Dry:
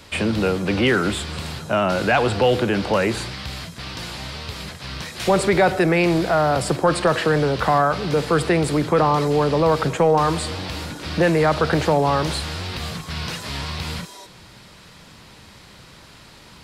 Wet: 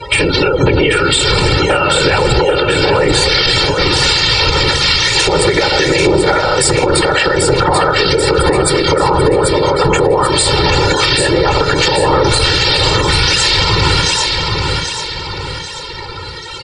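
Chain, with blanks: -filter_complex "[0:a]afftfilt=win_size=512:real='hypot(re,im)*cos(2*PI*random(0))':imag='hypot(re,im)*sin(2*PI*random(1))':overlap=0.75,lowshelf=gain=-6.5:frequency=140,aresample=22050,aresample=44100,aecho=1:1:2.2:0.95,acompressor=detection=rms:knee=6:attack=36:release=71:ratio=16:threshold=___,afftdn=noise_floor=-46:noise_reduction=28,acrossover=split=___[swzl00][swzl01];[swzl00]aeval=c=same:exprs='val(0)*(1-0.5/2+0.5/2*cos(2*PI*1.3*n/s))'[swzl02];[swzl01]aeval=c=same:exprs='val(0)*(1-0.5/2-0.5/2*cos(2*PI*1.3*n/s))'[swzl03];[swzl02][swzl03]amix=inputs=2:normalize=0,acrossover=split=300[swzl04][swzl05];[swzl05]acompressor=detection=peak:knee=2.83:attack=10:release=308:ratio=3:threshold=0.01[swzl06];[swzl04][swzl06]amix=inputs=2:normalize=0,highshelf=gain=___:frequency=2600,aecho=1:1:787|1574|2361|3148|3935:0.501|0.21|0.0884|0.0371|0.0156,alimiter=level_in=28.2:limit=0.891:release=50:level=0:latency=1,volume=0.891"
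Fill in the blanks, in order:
0.02, 1600, 7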